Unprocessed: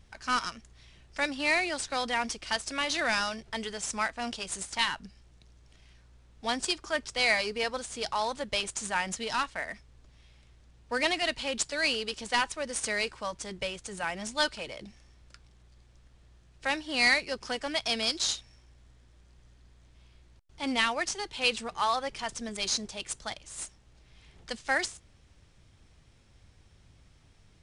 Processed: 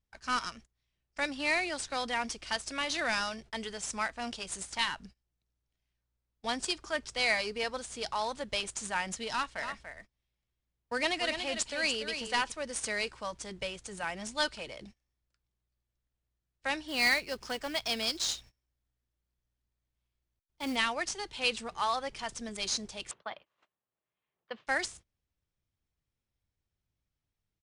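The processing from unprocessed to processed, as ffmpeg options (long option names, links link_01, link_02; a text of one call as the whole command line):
ffmpeg -i in.wav -filter_complex "[0:a]asplit=3[link_01][link_02][link_03];[link_01]afade=type=out:start_time=9.56:duration=0.02[link_04];[link_02]aecho=1:1:289:0.398,afade=type=in:start_time=9.56:duration=0.02,afade=type=out:start_time=12.5:duration=0.02[link_05];[link_03]afade=type=in:start_time=12.5:duration=0.02[link_06];[link_04][link_05][link_06]amix=inputs=3:normalize=0,asettb=1/sr,asplit=3[link_07][link_08][link_09];[link_07]atrim=end=16.884[link_10];[link_08]atrim=start=16.88:end=20.76,asetpts=PTS-STARTPTS,afade=type=in:duration=0.004:curve=qsin,afade=type=out:start_time=3.876:duration=0.004:curve=qsin,acrusher=bits=4:mode=log:mix=0:aa=0.000001[link_11];[link_09]atrim=start=20.756[link_12];[link_10][link_11]acrossfade=duration=0.004:curve1=hsin:curve2=qsin[link_13];[link_13][link_12]acrossfade=duration=0.004:curve1=qsin:curve2=hsin,asettb=1/sr,asplit=3[link_14][link_15][link_16];[link_14]atrim=end=23.114[link_17];[link_15]atrim=start=23.11:end=24.67,asetpts=PTS-STARTPTS,afade=type=in:duration=0.004:curve=qsin,afade=type=out:start_time=1.556:duration=0.004:curve=qsin,highpass=230,equalizer=frequency=270:width_type=q:width=4:gain=-6,equalizer=frequency=590:width_type=q:width=4:gain=3,equalizer=frequency=1100:width_type=q:width=4:gain=6,equalizer=frequency=2200:width_type=q:width=4:gain=-3,lowpass=frequency=3000:width=0.5412,lowpass=frequency=3000:width=1.3066[link_18];[link_16]atrim=start=24.666[link_19];[link_17][link_18]acrossfade=duration=0.004:curve1=hsin:curve2=qsin[link_20];[link_20][link_19]acrossfade=duration=0.004:curve1=qsin:curve2=hsin,agate=range=-24dB:threshold=-47dB:ratio=16:detection=peak,volume=-3dB" out.wav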